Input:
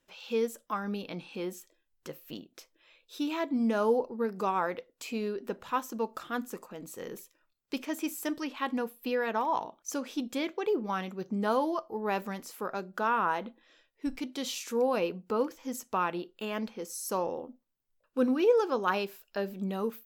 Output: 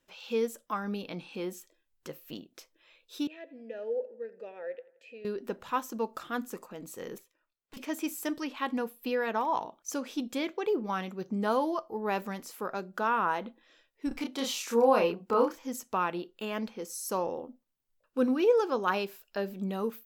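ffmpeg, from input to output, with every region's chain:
ffmpeg -i in.wav -filter_complex "[0:a]asettb=1/sr,asplit=3[link_01][link_02][link_03];[link_01]atrim=end=3.274[link_04];[link_02]atrim=start=3.27:end=5.25,asetpts=PTS-STARTPTS,afade=type=in:duration=0.004:curve=qsin,afade=type=out:start_time=1.976:duration=0.004:curve=qsin,asplit=3[link_05][link_06][link_07];[link_05]bandpass=frequency=530:width_type=q:width=8,volume=0dB[link_08];[link_06]bandpass=frequency=1840:width_type=q:width=8,volume=-6dB[link_09];[link_07]bandpass=frequency=2480:width_type=q:width=8,volume=-9dB[link_10];[link_08][link_09][link_10]amix=inputs=3:normalize=0,asplit=2[link_11][link_12];[link_12]adelay=87,lowpass=frequency=4300:poles=1,volume=-18.5dB,asplit=2[link_13][link_14];[link_14]adelay=87,lowpass=frequency=4300:poles=1,volume=0.51,asplit=2[link_15][link_16];[link_16]adelay=87,lowpass=frequency=4300:poles=1,volume=0.51,asplit=2[link_17][link_18];[link_18]adelay=87,lowpass=frequency=4300:poles=1,volume=0.51[link_19];[link_11][link_13][link_15][link_17][link_19]amix=inputs=5:normalize=0,atrim=end_sample=87318[link_20];[link_03]atrim=start=5.246[link_21];[link_04][link_20]acrossfade=duration=0.004:curve1=hsin:curve2=qsin[link_22];[link_22][link_21]acrossfade=duration=0.004:curve1=qsin:curve2=hsin,asettb=1/sr,asplit=3[link_23][link_24][link_25];[link_23]atrim=end=7.184[link_26];[link_24]atrim=start=7.18:end=7.77,asetpts=PTS-STARTPTS,afade=type=in:duration=0.004:curve=qsin,afade=type=out:start_time=0.586:duration=0.004:curve=qsin,bass=frequency=250:gain=-7,treble=frequency=4000:gain=-8,aeval=exprs='(mod(22.4*val(0)+1,2)-1)/22.4':channel_layout=same,aeval=exprs='(tanh(224*val(0)+0.7)-tanh(0.7))/224':channel_layout=same[link_27];[link_25]atrim=start=7.766[link_28];[link_26][link_27]acrossfade=duration=0.004:curve1=hsin:curve2=qsin[link_29];[link_29][link_28]acrossfade=duration=0.004:curve1=qsin:curve2=hsin,asettb=1/sr,asplit=3[link_30][link_31][link_32];[link_30]atrim=end=14.084[link_33];[link_31]atrim=start=14.08:end=15.59,asetpts=PTS-STARTPTS,afade=type=in:duration=0.004:curve=qsin,afade=type=out:start_time=1.506:duration=0.004:curve=qsin,equalizer=frequency=1000:width_type=o:width=1.5:gain=5.5,asplit=2[link_34][link_35];[link_35]adelay=30,volume=-3dB[link_36];[link_34][link_36]amix=inputs=2:normalize=0,atrim=end_sample=66591[link_37];[link_32]atrim=start=15.586[link_38];[link_33][link_37]acrossfade=duration=0.004:curve1=hsin:curve2=qsin[link_39];[link_39][link_38]acrossfade=duration=0.004:curve1=qsin:curve2=hsin" out.wav

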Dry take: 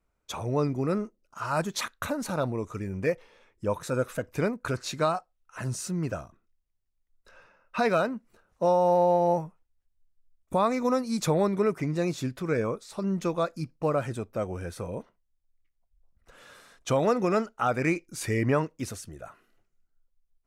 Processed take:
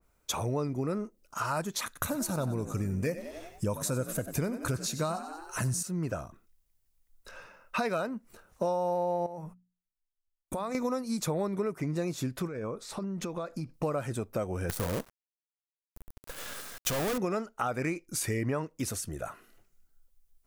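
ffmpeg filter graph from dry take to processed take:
ffmpeg -i in.wav -filter_complex "[0:a]asettb=1/sr,asplit=3[link_01][link_02][link_03];[link_01]atrim=end=1.864[link_04];[link_02]atrim=start=1.86:end=5.83,asetpts=PTS-STARTPTS,afade=type=in:duration=0.004:curve=qsin,afade=type=out:start_time=3.966:duration=0.004:curve=qsin,bass=frequency=250:gain=7,treble=frequency=4000:gain=9,asplit=6[link_05][link_06][link_07][link_08][link_09][link_10];[link_06]adelay=93,afreqshift=48,volume=-13.5dB[link_11];[link_07]adelay=186,afreqshift=96,volume=-19.7dB[link_12];[link_08]adelay=279,afreqshift=144,volume=-25.9dB[link_13];[link_09]adelay=372,afreqshift=192,volume=-32.1dB[link_14];[link_10]adelay=465,afreqshift=240,volume=-38.3dB[link_15];[link_05][link_11][link_12][link_13][link_14][link_15]amix=inputs=6:normalize=0,atrim=end_sample=175077[link_16];[link_03]atrim=start=5.826[link_17];[link_04][link_16]acrossfade=duration=0.004:curve1=hsin:curve2=qsin[link_18];[link_18][link_17]acrossfade=duration=0.004:curve1=qsin:curve2=hsin,asettb=1/sr,asplit=3[link_19][link_20][link_21];[link_19]atrim=end=9.264[link_22];[link_20]atrim=start=9.26:end=10.75,asetpts=PTS-STARTPTS,afade=type=in:duration=0.004:curve=qsin,afade=type=out:start_time=1.486:duration=0.004:curve=qsin,agate=range=-28dB:threshold=-55dB:ratio=16:release=100:detection=peak,bandreject=frequency=60:width_type=h:width=6,bandreject=frequency=120:width_type=h:width=6,bandreject=frequency=180:width_type=h:width=6,bandreject=frequency=240:width_type=h:width=6,acompressor=threshold=-39dB:ratio=3:attack=3.2:release=140:knee=1:detection=peak[link_23];[link_21]atrim=start=10.746[link_24];[link_22][link_23]acrossfade=duration=0.004:curve1=hsin:curve2=qsin[link_25];[link_25][link_24]acrossfade=duration=0.004:curve1=qsin:curve2=hsin,asettb=1/sr,asplit=3[link_26][link_27][link_28];[link_26]atrim=end=12.474[link_29];[link_27]atrim=start=12.47:end=13.74,asetpts=PTS-STARTPTS,afade=type=in:duration=0.004:curve=qsin,afade=type=out:start_time=1.266:duration=0.004:curve=qsin,aemphasis=mode=reproduction:type=cd,acompressor=threshold=-37dB:ratio=8:attack=3.2:release=140:knee=1:detection=peak[link_30];[link_28]atrim=start=13.736[link_31];[link_29][link_30]acrossfade=duration=0.004:curve1=hsin:curve2=qsin[link_32];[link_32][link_31]acrossfade=duration=0.004:curve1=qsin:curve2=hsin,asettb=1/sr,asplit=3[link_33][link_34][link_35];[link_33]atrim=end=14.694[link_36];[link_34]atrim=start=14.69:end=17.18,asetpts=PTS-STARTPTS,afade=type=in:duration=0.004:curve=qsin,afade=type=out:start_time=2.486:duration=0.004:curve=qsin,acontrast=70,volume=27dB,asoftclip=hard,volume=-27dB,acrusher=bits=6:dc=4:mix=0:aa=0.000001[link_37];[link_35]atrim=start=17.176[link_38];[link_36][link_37]acrossfade=duration=0.004:curve1=hsin:curve2=qsin[link_39];[link_39][link_38]acrossfade=duration=0.004:curve1=qsin:curve2=hsin,highshelf=frequency=6800:gain=11,acompressor=threshold=-36dB:ratio=4,adynamicequalizer=threshold=0.002:dfrequency=1900:dqfactor=0.7:tfrequency=1900:tqfactor=0.7:attack=5:release=100:ratio=0.375:range=2.5:mode=cutabove:tftype=highshelf,volume=6dB" out.wav

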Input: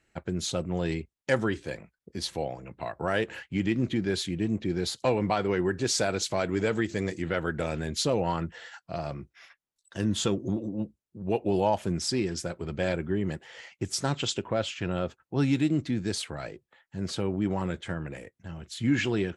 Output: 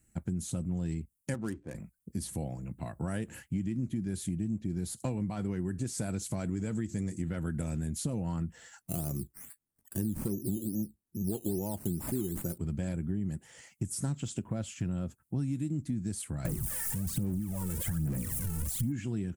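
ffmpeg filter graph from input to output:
ffmpeg -i in.wav -filter_complex "[0:a]asettb=1/sr,asplit=3[link_01][link_02][link_03];[link_01]atrim=end=1.344[link_04];[link_02]atrim=start=1.34:end=1.75,asetpts=PTS-STARTPTS,afade=type=in:duration=0.004:curve=qsin,afade=type=out:start_time=0.406:duration=0.004:curve=qsin,bass=frequency=250:gain=-11,treble=frequency=4000:gain=-1,adynamicsmooth=sensitivity=4:basefreq=720[link_05];[link_03]atrim=start=1.746[link_06];[link_04][link_05]acrossfade=duration=0.004:curve1=hsin:curve2=qsin[link_07];[link_07][link_06]acrossfade=duration=0.004:curve1=qsin:curve2=hsin,asettb=1/sr,asplit=3[link_08][link_09][link_10];[link_08]atrim=end=8.814[link_11];[link_09]atrim=start=8.81:end=12.58,asetpts=PTS-STARTPTS,afade=type=in:duration=0.004:curve=qsin,afade=type=out:start_time=3.766:duration=0.004:curve=qsin,equalizer=frequency=380:width_type=o:width=0.64:gain=10,acrusher=samples=10:mix=1:aa=0.000001:lfo=1:lforange=6:lforate=2.4[link_12];[link_10]atrim=start=12.576[link_13];[link_11][link_12]acrossfade=duration=0.004:curve1=hsin:curve2=qsin[link_14];[link_14][link_13]acrossfade=duration=0.004:curve1=qsin:curve2=hsin,asettb=1/sr,asplit=3[link_15][link_16][link_17];[link_15]atrim=end=16.454[link_18];[link_16]atrim=start=16.45:end=18.92,asetpts=PTS-STARTPTS,afade=type=in:duration=0.004:curve=qsin,afade=type=out:start_time=2.466:duration=0.004:curve=qsin,aeval=exprs='val(0)+0.5*0.0299*sgn(val(0))':channel_layout=same,acompressor=threshold=-32dB:ratio=2.5:attack=3.2:release=140:knee=1:detection=peak,aphaser=in_gain=1:out_gain=1:delay=2.3:decay=0.7:speed=1.2:type=sinusoidal[link_19];[link_17]atrim=start=18.916[link_20];[link_18][link_19]acrossfade=duration=0.004:curve1=hsin:curve2=qsin[link_21];[link_21][link_20]acrossfade=duration=0.004:curve1=qsin:curve2=hsin,acrossover=split=3200[link_22][link_23];[link_23]acompressor=threshold=-39dB:ratio=4:attack=1:release=60[link_24];[link_22][link_24]amix=inputs=2:normalize=0,firequalizer=gain_entry='entry(220,0);entry(410,-15);entry(3700,-17);entry(9000,9)':delay=0.05:min_phase=1,acompressor=threshold=-36dB:ratio=6,volume=6dB" out.wav

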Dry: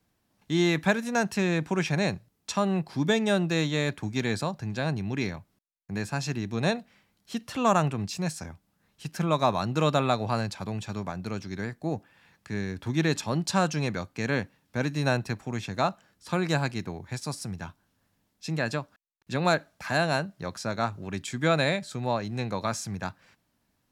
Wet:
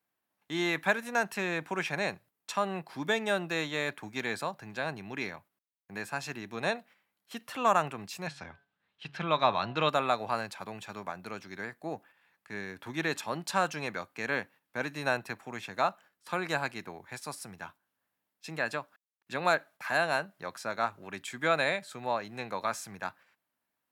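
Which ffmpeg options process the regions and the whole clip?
ffmpeg -i in.wav -filter_complex "[0:a]asettb=1/sr,asplit=3[link_01][link_02][link_03];[link_01]atrim=end=8.274[link_04];[link_02]atrim=start=8.27:end=9.89,asetpts=PTS-STARTPTS,afade=type=in:duration=0.004:curve=qsin,afade=type=out:start_time=1.616:duration=0.004:curve=qsin,lowpass=frequency=3600:width_type=q:width=2.1,equalizer=frequency=92:width=0.79:gain=7,bandreject=frequency=140.5:width_type=h:width=4,bandreject=frequency=281:width_type=h:width=4,bandreject=frequency=421.5:width_type=h:width=4,bandreject=frequency=562:width_type=h:width=4,bandreject=frequency=702.5:width_type=h:width=4,bandreject=frequency=843:width_type=h:width=4,bandreject=frequency=983.5:width_type=h:width=4,bandreject=frequency=1124:width_type=h:width=4,bandreject=frequency=1264.5:width_type=h:width=4,bandreject=frequency=1405:width_type=h:width=4,bandreject=frequency=1545.5:width_type=h:width=4,bandreject=frequency=1686:width_type=h:width=4[link_05];[link_03]atrim=start=9.886[link_06];[link_04][link_05]acrossfade=duration=0.004:curve1=hsin:curve2=qsin[link_07];[link_07][link_06]acrossfade=duration=0.004:curve1=qsin:curve2=hsin,agate=range=-7dB:threshold=-48dB:ratio=16:detection=peak,highpass=frequency=1400:poles=1,equalizer=frequency=5700:width_type=o:width=1.9:gain=-12.5,volume=5dB" out.wav

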